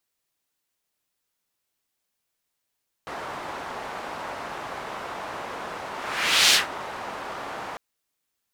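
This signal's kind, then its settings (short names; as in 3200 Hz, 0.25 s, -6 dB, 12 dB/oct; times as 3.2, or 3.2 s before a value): whoosh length 4.70 s, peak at 3.46, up 0.62 s, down 0.16 s, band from 940 Hz, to 4000 Hz, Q 1.2, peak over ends 18 dB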